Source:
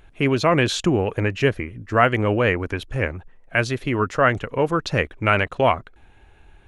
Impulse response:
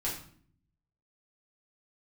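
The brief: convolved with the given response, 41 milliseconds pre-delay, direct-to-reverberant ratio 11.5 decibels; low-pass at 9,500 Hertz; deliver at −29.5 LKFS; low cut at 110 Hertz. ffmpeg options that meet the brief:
-filter_complex "[0:a]highpass=110,lowpass=9500,asplit=2[link_01][link_02];[1:a]atrim=start_sample=2205,adelay=41[link_03];[link_02][link_03]afir=irnorm=-1:irlink=0,volume=-16dB[link_04];[link_01][link_04]amix=inputs=2:normalize=0,volume=-8.5dB"

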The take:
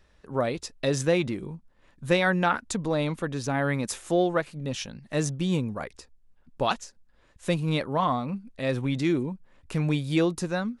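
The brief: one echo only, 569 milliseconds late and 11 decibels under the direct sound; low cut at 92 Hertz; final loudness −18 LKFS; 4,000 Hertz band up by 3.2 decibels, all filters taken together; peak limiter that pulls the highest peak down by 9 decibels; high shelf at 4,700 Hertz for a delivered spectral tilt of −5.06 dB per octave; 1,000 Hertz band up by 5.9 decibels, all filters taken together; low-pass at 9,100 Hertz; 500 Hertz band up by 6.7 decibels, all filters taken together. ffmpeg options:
ffmpeg -i in.wav -af "highpass=92,lowpass=9100,equalizer=frequency=500:width_type=o:gain=6.5,equalizer=frequency=1000:width_type=o:gain=5.5,equalizer=frequency=4000:width_type=o:gain=7,highshelf=frequency=4700:gain=-8,alimiter=limit=-13.5dB:level=0:latency=1,aecho=1:1:569:0.282,volume=8dB" out.wav

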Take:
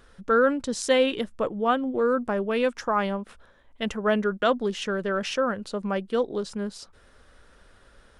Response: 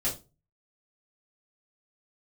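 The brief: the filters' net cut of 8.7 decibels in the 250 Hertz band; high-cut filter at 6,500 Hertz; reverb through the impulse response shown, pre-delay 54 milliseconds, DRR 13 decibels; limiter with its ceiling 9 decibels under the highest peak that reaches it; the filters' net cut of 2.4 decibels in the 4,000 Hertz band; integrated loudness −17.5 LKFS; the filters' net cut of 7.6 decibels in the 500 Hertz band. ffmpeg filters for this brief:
-filter_complex "[0:a]lowpass=6500,equalizer=frequency=250:width_type=o:gain=-9,equalizer=frequency=500:width_type=o:gain=-6.5,equalizer=frequency=4000:width_type=o:gain=-3,alimiter=limit=-22.5dB:level=0:latency=1,asplit=2[link_01][link_02];[1:a]atrim=start_sample=2205,adelay=54[link_03];[link_02][link_03]afir=irnorm=-1:irlink=0,volume=-19.5dB[link_04];[link_01][link_04]amix=inputs=2:normalize=0,volume=16dB"

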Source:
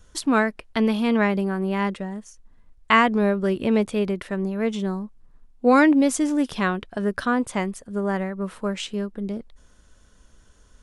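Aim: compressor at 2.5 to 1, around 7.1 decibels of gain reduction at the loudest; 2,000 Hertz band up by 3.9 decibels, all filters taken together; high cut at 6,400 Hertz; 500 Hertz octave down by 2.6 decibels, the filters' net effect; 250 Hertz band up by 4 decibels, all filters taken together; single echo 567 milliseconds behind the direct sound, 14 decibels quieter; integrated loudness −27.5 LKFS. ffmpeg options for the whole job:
ffmpeg -i in.wav -af "lowpass=6400,equalizer=frequency=250:width_type=o:gain=6,equalizer=frequency=500:width_type=o:gain=-5.5,equalizer=frequency=2000:width_type=o:gain=5,acompressor=threshold=-21dB:ratio=2.5,aecho=1:1:567:0.2,volume=-2.5dB" out.wav

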